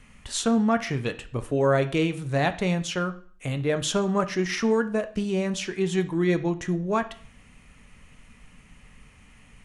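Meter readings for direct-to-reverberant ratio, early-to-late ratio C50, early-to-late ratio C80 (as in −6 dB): 9.0 dB, 15.0 dB, 19.0 dB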